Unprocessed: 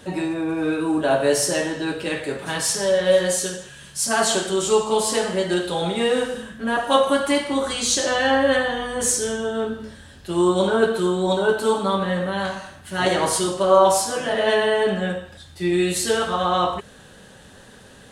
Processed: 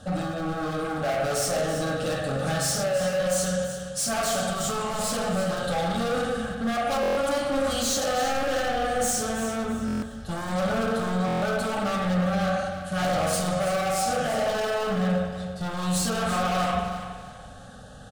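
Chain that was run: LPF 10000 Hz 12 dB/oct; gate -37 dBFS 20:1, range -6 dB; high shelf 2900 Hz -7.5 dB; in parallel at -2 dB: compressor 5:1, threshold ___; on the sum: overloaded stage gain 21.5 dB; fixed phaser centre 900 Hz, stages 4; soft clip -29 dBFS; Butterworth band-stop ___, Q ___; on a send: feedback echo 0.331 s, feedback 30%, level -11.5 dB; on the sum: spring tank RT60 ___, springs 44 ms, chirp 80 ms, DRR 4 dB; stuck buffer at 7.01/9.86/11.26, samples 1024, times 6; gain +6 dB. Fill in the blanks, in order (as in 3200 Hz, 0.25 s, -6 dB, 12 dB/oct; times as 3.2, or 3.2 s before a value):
-30 dBFS, 970 Hz, 3.7, 1.1 s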